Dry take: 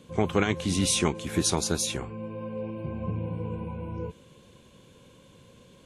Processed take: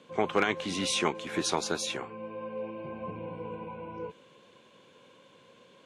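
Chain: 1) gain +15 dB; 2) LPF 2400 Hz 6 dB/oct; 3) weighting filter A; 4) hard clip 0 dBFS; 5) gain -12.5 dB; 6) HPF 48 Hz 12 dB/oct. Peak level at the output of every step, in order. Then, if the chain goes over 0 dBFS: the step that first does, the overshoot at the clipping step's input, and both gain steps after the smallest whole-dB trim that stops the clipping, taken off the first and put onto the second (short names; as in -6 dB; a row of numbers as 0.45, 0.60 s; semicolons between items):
+5.0, +4.5, +3.0, 0.0, -12.5, -12.0 dBFS; step 1, 3.0 dB; step 1 +12 dB, step 5 -9.5 dB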